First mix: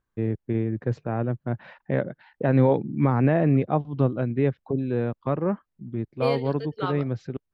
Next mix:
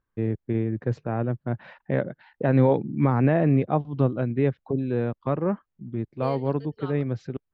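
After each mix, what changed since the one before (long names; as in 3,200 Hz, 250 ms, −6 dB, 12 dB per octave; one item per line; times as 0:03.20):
second voice −10.5 dB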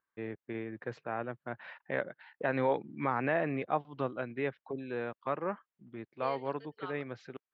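second voice: add high-frequency loss of the air 54 metres
master: add resonant band-pass 2,000 Hz, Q 0.66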